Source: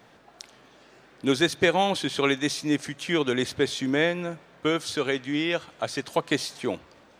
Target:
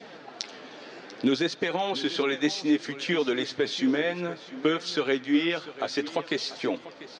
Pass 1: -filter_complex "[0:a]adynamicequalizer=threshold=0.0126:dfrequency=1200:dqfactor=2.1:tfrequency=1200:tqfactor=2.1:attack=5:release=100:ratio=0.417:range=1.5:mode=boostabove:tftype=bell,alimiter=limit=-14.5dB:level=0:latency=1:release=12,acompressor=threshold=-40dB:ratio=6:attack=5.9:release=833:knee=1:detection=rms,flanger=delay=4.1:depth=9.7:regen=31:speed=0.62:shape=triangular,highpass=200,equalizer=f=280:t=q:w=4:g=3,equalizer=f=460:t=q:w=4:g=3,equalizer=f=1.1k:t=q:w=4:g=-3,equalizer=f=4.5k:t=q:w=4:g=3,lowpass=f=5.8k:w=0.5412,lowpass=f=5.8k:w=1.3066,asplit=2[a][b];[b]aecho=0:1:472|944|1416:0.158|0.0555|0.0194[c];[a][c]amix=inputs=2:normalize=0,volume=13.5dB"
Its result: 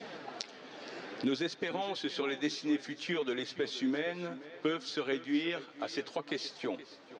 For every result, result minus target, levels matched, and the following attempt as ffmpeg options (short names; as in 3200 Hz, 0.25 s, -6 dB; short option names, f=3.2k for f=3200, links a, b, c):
compressor: peak gain reduction +8 dB; echo 0.221 s early
-filter_complex "[0:a]adynamicequalizer=threshold=0.0126:dfrequency=1200:dqfactor=2.1:tfrequency=1200:tqfactor=2.1:attack=5:release=100:ratio=0.417:range=1.5:mode=boostabove:tftype=bell,alimiter=limit=-14.5dB:level=0:latency=1:release=12,acompressor=threshold=-30.5dB:ratio=6:attack=5.9:release=833:knee=1:detection=rms,flanger=delay=4.1:depth=9.7:regen=31:speed=0.62:shape=triangular,highpass=200,equalizer=f=280:t=q:w=4:g=3,equalizer=f=460:t=q:w=4:g=3,equalizer=f=1.1k:t=q:w=4:g=-3,equalizer=f=4.5k:t=q:w=4:g=3,lowpass=f=5.8k:w=0.5412,lowpass=f=5.8k:w=1.3066,asplit=2[a][b];[b]aecho=0:1:472|944|1416:0.158|0.0555|0.0194[c];[a][c]amix=inputs=2:normalize=0,volume=13.5dB"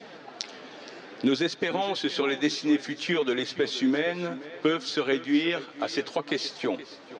echo 0.221 s early
-filter_complex "[0:a]adynamicequalizer=threshold=0.0126:dfrequency=1200:dqfactor=2.1:tfrequency=1200:tqfactor=2.1:attack=5:release=100:ratio=0.417:range=1.5:mode=boostabove:tftype=bell,alimiter=limit=-14.5dB:level=0:latency=1:release=12,acompressor=threshold=-30.5dB:ratio=6:attack=5.9:release=833:knee=1:detection=rms,flanger=delay=4.1:depth=9.7:regen=31:speed=0.62:shape=triangular,highpass=200,equalizer=f=280:t=q:w=4:g=3,equalizer=f=460:t=q:w=4:g=3,equalizer=f=1.1k:t=q:w=4:g=-3,equalizer=f=4.5k:t=q:w=4:g=3,lowpass=f=5.8k:w=0.5412,lowpass=f=5.8k:w=1.3066,asplit=2[a][b];[b]aecho=0:1:693|1386|2079:0.158|0.0555|0.0194[c];[a][c]amix=inputs=2:normalize=0,volume=13.5dB"